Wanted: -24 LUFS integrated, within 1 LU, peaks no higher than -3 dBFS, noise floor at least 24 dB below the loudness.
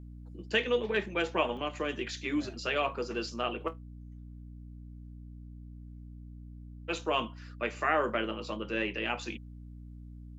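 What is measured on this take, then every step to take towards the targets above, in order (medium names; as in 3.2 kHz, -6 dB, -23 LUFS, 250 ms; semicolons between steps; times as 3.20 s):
dropouts 1; longest dropout 2.2 ms; hum 60 Hz; highest harmonic 300 Hz; hum level -44 dBFS; loudness -32.5 LUFS; peak level -13.5 dBFS; loudness target -24.0 LUFS
-> interpolate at 1.57 s, 2.2 ms; de-hum 60 Hz, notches 5; trim +8.5 dB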